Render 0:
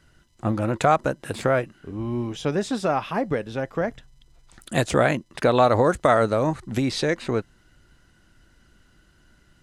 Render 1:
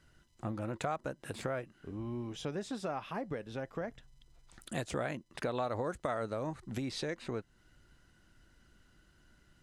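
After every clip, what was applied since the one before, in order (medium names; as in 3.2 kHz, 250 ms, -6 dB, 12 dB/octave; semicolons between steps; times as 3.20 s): compression 2:1, threshold -33 dBFS, peak gain reduction 11 dB; trim -7 dB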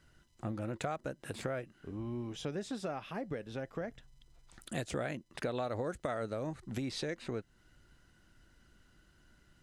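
dynamic bell 1 kHz, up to -6 dB, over -52 dBFS, Q 2.1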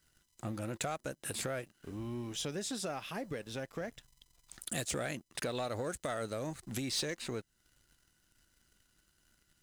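pre-emphasis filter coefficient 0.8; waveshaping leveller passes 2; trim +5.5 dB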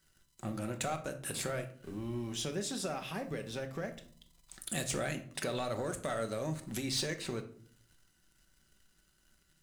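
simulated room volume 620 m³, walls furnished, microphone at 1.1 m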